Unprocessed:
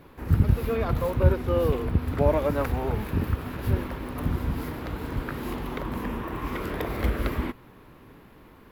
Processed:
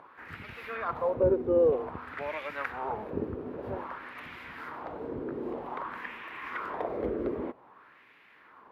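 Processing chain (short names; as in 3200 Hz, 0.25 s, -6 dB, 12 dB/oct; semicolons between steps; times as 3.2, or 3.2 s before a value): upward compressor, threshold -44 dBFS; LFO band-pass sine 0.52 Hz 390–2300 Hz; gain +4.5 dB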